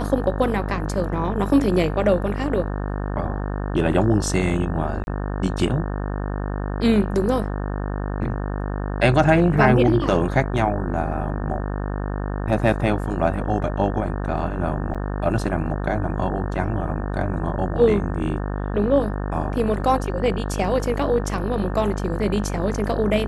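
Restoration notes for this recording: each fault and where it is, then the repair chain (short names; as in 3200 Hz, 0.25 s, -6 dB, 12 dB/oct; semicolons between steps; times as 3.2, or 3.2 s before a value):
buzz 50 Hz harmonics 36 -26 dBFS
5.04–5.07 gap 31 ms
14.94–14.95 gap 6.7 ms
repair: de-hum 50 Hz, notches 36; interpolate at 5.04, 31 ms; interpolate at 14.94, 6.7 ms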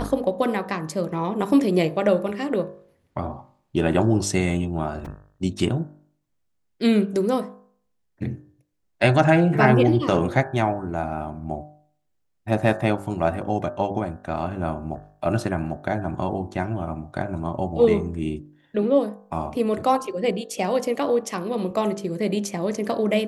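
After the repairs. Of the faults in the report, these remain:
none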